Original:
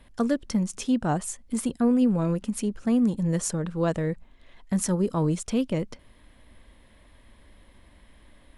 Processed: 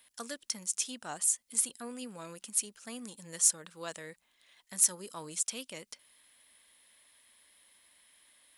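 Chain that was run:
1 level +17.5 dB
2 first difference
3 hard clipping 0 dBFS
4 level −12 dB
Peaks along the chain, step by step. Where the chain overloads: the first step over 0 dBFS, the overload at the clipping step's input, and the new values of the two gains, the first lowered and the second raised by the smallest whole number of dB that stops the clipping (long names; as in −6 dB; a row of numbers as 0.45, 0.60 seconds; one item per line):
+7.5, +8.0, 0.0, −12.0 dBFS
step 1, 8.0 dB
step 1 +9.5 dB, step 4 −4 dB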